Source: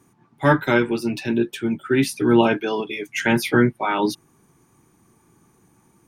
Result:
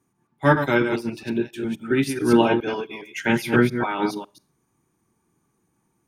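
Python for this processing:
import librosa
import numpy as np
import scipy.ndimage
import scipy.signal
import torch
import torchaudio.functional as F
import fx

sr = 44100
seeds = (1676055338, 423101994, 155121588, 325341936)

y = fx.reverse_delay(x, sr, ms=137, wet_db=-5.5)
y = fx.rev_schroeder(y, sr, rt60_s=0.37, comb_ms=28, drr_db=19.0)
y = fx.upward_expand(y, sr, threshold_db=-37.0, expansion=1.5)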